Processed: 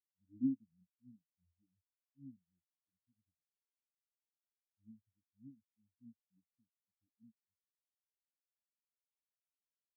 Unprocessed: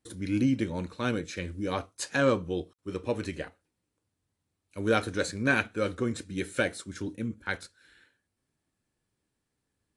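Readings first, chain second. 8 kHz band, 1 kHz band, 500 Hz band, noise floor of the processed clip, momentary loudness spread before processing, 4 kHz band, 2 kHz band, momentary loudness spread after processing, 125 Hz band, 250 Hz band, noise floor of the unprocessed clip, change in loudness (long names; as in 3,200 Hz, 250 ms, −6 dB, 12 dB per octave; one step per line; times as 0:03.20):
below −35 dB, below −40 dB, below −40 dB, below −85 dBFS, 11 LU, below −40 dB, below −40 dB, 20 LU, −26.5 dB, −15.0 dB, −83 dBFS, −8.5 dB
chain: inverse Chebyshev low-pass filter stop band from 700 Hz, stop band 50 dB
every bin expanded away from the loudest bin 4 to 1
level −7 dB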